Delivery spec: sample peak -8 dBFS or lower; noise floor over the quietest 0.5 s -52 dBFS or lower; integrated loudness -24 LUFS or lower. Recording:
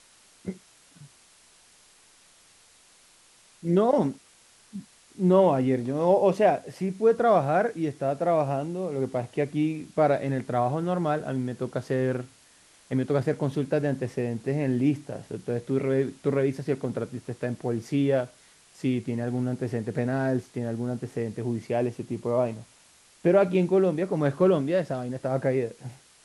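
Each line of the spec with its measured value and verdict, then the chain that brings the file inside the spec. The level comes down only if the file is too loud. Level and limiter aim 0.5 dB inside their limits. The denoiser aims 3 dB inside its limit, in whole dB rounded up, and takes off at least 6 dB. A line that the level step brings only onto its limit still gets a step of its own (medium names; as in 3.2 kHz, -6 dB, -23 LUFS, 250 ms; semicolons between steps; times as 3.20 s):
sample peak -9.0 dBFS: pass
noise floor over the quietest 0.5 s -58 dBFS: pass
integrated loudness -26.5 LUFS: pass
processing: none needed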